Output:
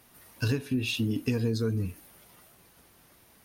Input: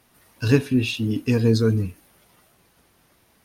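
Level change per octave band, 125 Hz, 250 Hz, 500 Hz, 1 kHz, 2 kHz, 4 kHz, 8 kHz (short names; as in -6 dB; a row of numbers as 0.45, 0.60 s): -8.0, -8.5, -10.0, -8.5, -6.0, -4.5, -4.5 dB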